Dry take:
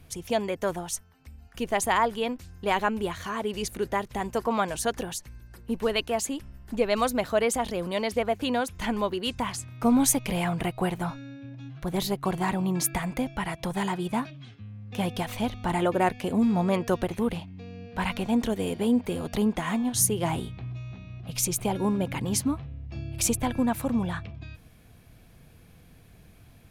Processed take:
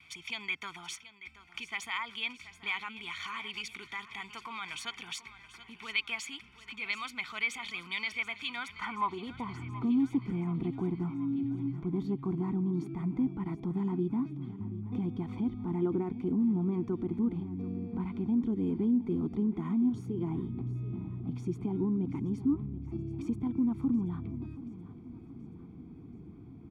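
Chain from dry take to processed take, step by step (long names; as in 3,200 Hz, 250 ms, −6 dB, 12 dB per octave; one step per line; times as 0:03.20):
running median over 3 samples
noise gate with hold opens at −49 dBFS
low-shelf EQ 430 Hz +6 dB
comb filter 0.9 ms, depth 98%
dynamic equaliser 550 Hz, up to −7 dB, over −34 dBFS, Q 0.74
in parallel at +2.5 dB: downward compressor, threshold −29 dBFS, peak gain reduction 15.5 dB
on the sum: brickwall limiter −16 dBFS, peak gain reduction 10.5 dB
band-pass filter sweep 2,500 Hz → 330 Hz, 0:08.51–0:09.64
on a send: repeating echo 729 ms, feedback 55%, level −15.5 dB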